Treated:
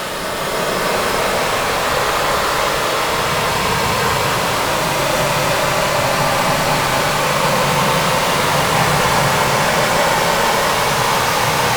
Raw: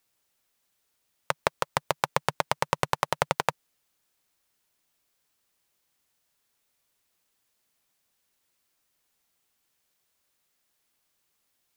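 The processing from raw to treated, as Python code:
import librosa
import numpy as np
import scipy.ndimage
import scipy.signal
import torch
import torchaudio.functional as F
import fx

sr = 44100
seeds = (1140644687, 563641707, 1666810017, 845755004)

y = fx.rev_schroeder(x, sr, rt60_s=3.3, comb_ms=29, drr_db=5.0)
y = fx.fuzz(y, sr, gain_db=33.0, gate_db=-35.0)
y = fx.paulstretch(y, sr, seeds[0], factor=10.0, window_s=0.25, from_s=1.39)
y = y * 10.0 ** (6.5 / 20.0)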